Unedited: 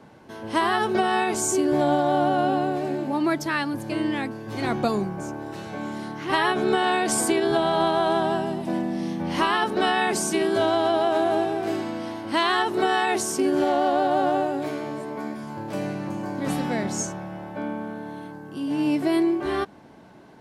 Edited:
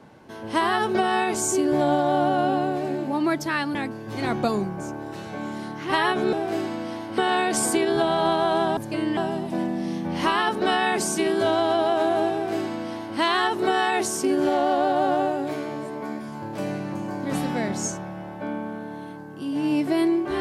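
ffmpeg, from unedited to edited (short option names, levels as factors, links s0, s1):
-filter_complex "[0:a]asplit=6[s0][s1][s2][s3][s4][s5];[s0]atrim=end=3.752[s6];[s1]atrim=start=4.148:end=6.732[s7];[s2]atrim=start=11.478:end=12.332[s8];[s3]atrim=start=6.728:end=8.322[s9];[s4]atrim=start=3.748:end=4.152[s10];[s5]atrim=start=8.318[s11];[s6][s7]acrossfade=d=0.004:c1=hsin:c2=hsin[s12];[s12][s8]acrossfade=d=0.004:c1=hsin:c2=hsin[s13];[s13][s9]acrossfade=d=0.004:c1=hsin:c2=hsin[s14];[s14][s10]acrossfade=d=0.004:c1=hsin:c2=hsin[s15];[s15][s11]acrossfade=d=0.004:c1=hsin:c2=hsin"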